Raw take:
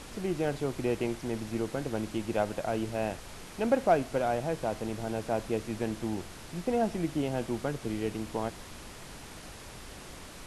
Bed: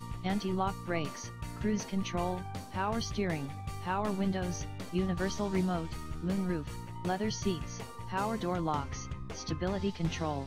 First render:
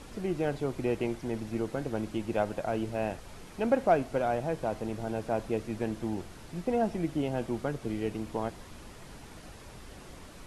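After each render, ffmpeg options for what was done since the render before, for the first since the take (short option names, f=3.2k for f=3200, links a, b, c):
-af "afftdn=nr=6:nf=-47"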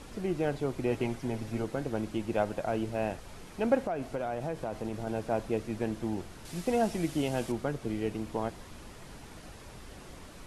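-filter_complex "[0:a]asettb=1/sr,asplit=3[a][b][c];[a]atrim=end=0.914[d];[b]atrim=start=0.91:end=1.64,asetpts=PTS-STARTPTS,afade=t=in:d=0.004:c=qsin,afade=t=out:st=0.726:d=0.004:c=qsin,aecho=1:1:7.4:0.56,atrim=end_sample=32193[e];[c]atrim=start=1.636[f];[d][e]acrossfade=d=0.004:c1=hsin:c2=qsin[g];[g][f]acrossfade=d=0.004:c1=qsin:c2=hsin,asettb=1/sr,asplit=3[h][i][j];[h]atrim=end=3.864[k];[i]atrim=start=3.86:end=5.07,asetpts=PTS-STARTPTS,afade=t=in:d=0.004:c=qsin,afade=t=out:st=1.206:d=0.004:c=qsin,acompressor=threshold=-29dB:ratio=6:attack=3.2:release=140:knee=1:detection=peak[l];[j]atrim=start=5.066[m];[k][l]acrossfade=d=0.004:c1=hsin:c2=qsin[n];[n][m]acrossfade=d=0.004:c1=qsin:c2=hsin,asettb=1/sr,asplit=3[o][p][q];[o]atrim=end=6.454[r];[p]atrim=start=6.45:end=7.52,asetpts=PTS-STARTPTS,afade=t=in:d=0.004:c=qsin,afade=t=out:st=1.066:d=0.004:c=qsin,highshelf=f=2.8k:g=11[s];[q]atrim=start=7.516[t];[r][s]acrossfade=d=0.004:c1=hsin:c2=qsin[u];[u][t]acrossfade=d=0.004:c1=qsin:c2=hsin"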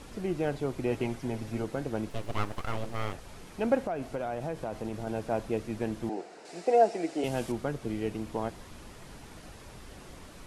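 -filter_complex "[0:a]asettb=1/sr,asplit=3[a][b][c];[a]atrim=end=2.094[d];[b]atrim=start=2.09:end=3.14,asetpts=PTS-STARTPTS,afade=t=in:d=0.004:c=qsin,afade=t=out:st=1.046:d=0.004:c=qsin,aeval=exprs='abs(val(0))':c=same[e];[c]atrim=start=3.136[f];[d][e]acrossfade=d=0.004:c1=hsin:c2=qsin[g];[g][f]acrossfade=d=0.004:c1=qsin:c2=hsin,asettb=1/sr,asplit=3[h][i][j];[h]atrim=end=6.094[k];[i]atrim=start=6.09:end=7.24,asetpts=PTS-STARTPTS,afade=t=in:d=0.004:c=qsin,afade=t=out:st=1.146:d=0.004:c=qsin,highpass=f=240:w=0.5412,highpass=f=240:w=1.3066,equalizer=f=240:t=q:w=4:g=-7,equalizer=f=450:t=q:w=4:g=7,equalizer=f=720:t=q:w=4:g=9,equalizer=f=1.1k:t=q:w=4:g=-5,equalizer=f=3.3k:t=q:w=4:g=-8,equalizer=f=6.2k:t=q:w=4:g=-4,lowpass=f=8k:w=0.5412,lowpass=f=8k:w=1.3066[l];[j]atrim=start=7.236[m];[k][l]acrossfade=d=0.004:c1=hsin:c2=qsin[n];[n][m]acrossfade=d=0.004:c1=qsin:c2=hsin"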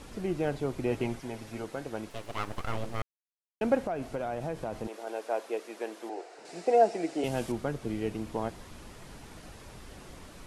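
-filter_complex "[0:a]asettb=1/sr,asplit=3[a][b][c];[a]atrim=end=1.204[d];[b]atrim=start=1.2:end=2.48,asetpts=PTS-STARTPTS,afade=t=in:d=0.004:c=qsin,afade=t=out:st=1.276:d=0.004:c=qsin,lowshelf=f=350:g=-9[e];[c]atrim=start=2.476[f];[d][e]acrossfade=d=0.004:c1=hsin:c2=qsin[g];[g][f]acrossfade=d=0.004:c1=qsin:c2=hsin,asettb=1/sr,asplit=3[h][i][j];[h]atrim=end=4.874[k];[i]atrim=start=4.87:end=6.38,asetpts=PTS-STARTPTS,afade=t=in:d=0.004:c=qsin,afade=t=out:st=1.506:d=0.004:c=qsin,highpass=f=380:w=0.5412,highpass=f=380:w=1.3066[l];[j]atrim=start=6.376[m];[k][l]acrossfade=d=0.004:c1=hsin:c2=qsin[n];[n][m]acrossfade=d=0.004:c1=qsin:c2=hsin,asplit=3[o][p][q];[o]atrim=end=3.02,asetpts=PTS-STARTPTS,afade=t=out:st=3.016:d=0.004:c=hsin[r];[p]atrim=start=3.02:end=3.61,asetpts=PTS-STARTPTS,volume=0[s];[q]atrim=start=3.61,asetpts=PTS-STARTPTS,afade=t=in:d=0.004:c=hsin[t];[r][s][t]concat=n=3:v=0:a=1"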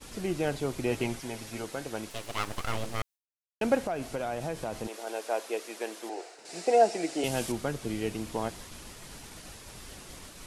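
-af "agate=range=-33dB:threshold=-45dB:ratio=3:detection=peak,highshelf=f=2.6k:g=10.5"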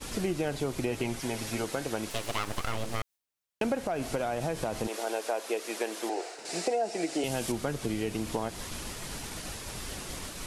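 -filter_complex "[0:a]asplit=2[a][b];[b]alimiter=limit=-21dB:level=0:latency=1,volume=2dB[c];[a][c]amix=inputs=2:normalize=0,acompressor=threshold=-28dB:ratio=4"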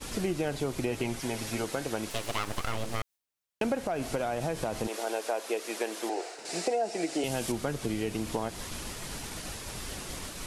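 -af anull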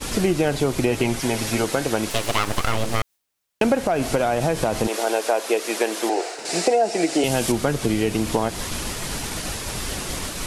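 -af "volume=10.5dB"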